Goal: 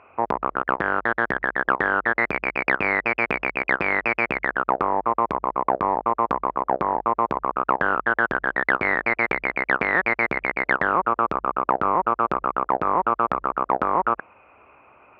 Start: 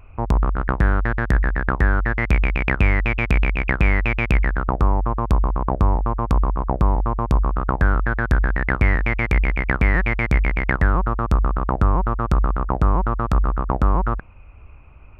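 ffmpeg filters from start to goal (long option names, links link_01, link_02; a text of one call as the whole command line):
ffmpeg -i in.wav -af "acontrast=77,highpass=450,lowpass=2000" out.wav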